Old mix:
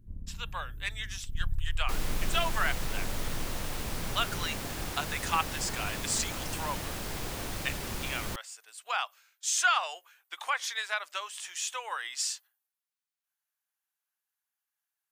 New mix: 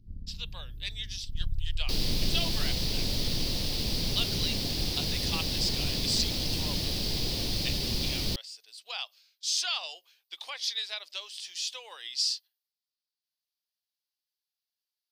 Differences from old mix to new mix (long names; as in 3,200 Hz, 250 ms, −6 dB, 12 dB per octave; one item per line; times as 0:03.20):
second sound +6.0 dB
master: add drawn EQ curve 230 Hz 0 dB, 500 Hz −4 dB, 860 Hz −11 dB, 1,400 Hz −17 dB, 4,800 Hz +11 dB, 7,000 Hz −8 dB, 15,000 Hz −5 dB